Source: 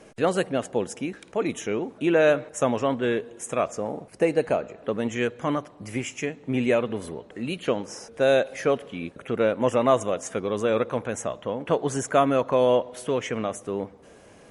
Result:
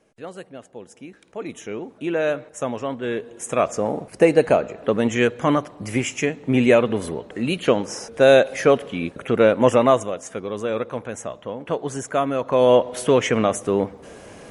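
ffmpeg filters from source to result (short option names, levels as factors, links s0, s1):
-af "volume=7.5,afade=t=in:st=0.79:d=1.03:silence=0.316228,afade=t=in:st=3.01:d=0.85:silence=0.316228,afade=t=out:st=9.71:d=0.4:silence=0.375837,afade=t=in:st=12.39:d=0.59:silence=0.298538"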